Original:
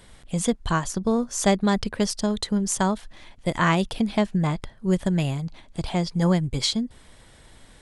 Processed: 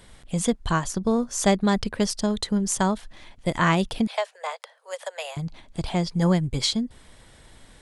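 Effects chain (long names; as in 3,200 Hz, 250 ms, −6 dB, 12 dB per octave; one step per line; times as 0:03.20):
0:04.07–0:05.37: Butterworth high-pass 470 Hz 96 dB per octave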